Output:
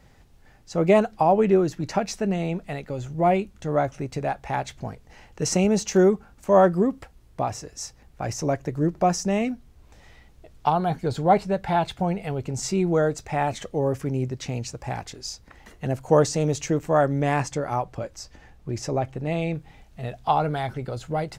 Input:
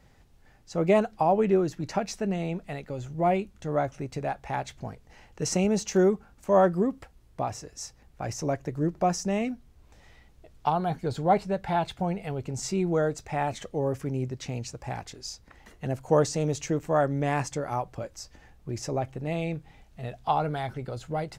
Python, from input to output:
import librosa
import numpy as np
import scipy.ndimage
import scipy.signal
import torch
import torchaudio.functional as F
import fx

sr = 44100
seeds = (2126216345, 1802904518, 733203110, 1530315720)

y = fx.high_shelf(x, sr, hz=9000.0, db=-6.0, at=(17.36, 19.55))
y = y * 10.0 ** (4.0 / 20.0)